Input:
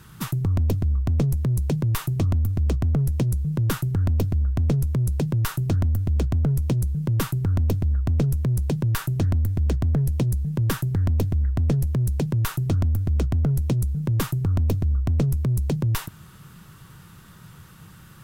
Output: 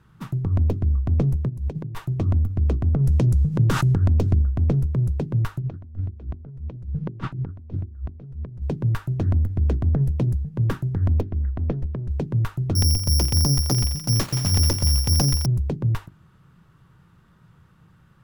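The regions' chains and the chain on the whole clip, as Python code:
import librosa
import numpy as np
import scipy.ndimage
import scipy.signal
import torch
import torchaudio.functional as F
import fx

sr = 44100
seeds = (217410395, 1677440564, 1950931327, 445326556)

y = fx.chain(x, sr, fx.notch(hz=1300.0, q=8.9),
    fx.over_compress(threshold_db=-25.0, ratio=-0.5), at=(1.48, 2.05))
y = fx.chain(y, sr, fx.peak_eq(hz=6700.0, db=7.0, octaves=1.6),
    fx.env_flatten(amount_pct=100), at=(3.04, 4.42))
y = fx.chain(y, sr, fx.hum_notches(base_hz=50, count=7),
    fx.over_compress(threshold_db=-27.0, ratio=-0.5),
    fx.lowpass(hz=4000.0, slope=12), at=(5.59, 8.62))
y = fx.chain(y, sr, fx.lowpass(hz=3800.0, slope=12),
    fx.peak_eq(hz=120.0, db=-6.5, octaves=1.1), at=(11.21, 12.11))
y = fx.chain(y, sr, fx.self_delay(depth_ms=0.57),
    fx.echo_wet_highpass(ms=86, feedback_pct=82, hz=5200.0, wet_db=-3.5),
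    fx.resample_bad(factor=8, down='none', up='zero_stuff'), at=(12.75, 15.46))
y = fx.lowpass(y, sr, hz=1400.0, slope=6)
y = fx.hum_notches(y, sr, base_hz=50, count=8)
y = fx.upward_expand(y, sr, threshold_db=-37.0, expansion=1.5)
y = F.gain(torch.from_numpy(y), 3.0).numpy()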